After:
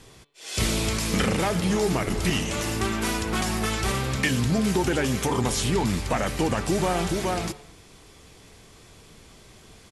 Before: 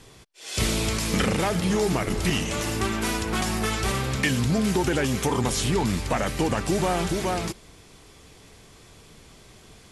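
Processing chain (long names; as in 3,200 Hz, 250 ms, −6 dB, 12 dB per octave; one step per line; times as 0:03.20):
hum removal 144.5 Hz, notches 30
far-end echo of a speakerphone 220 ms, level −23 dB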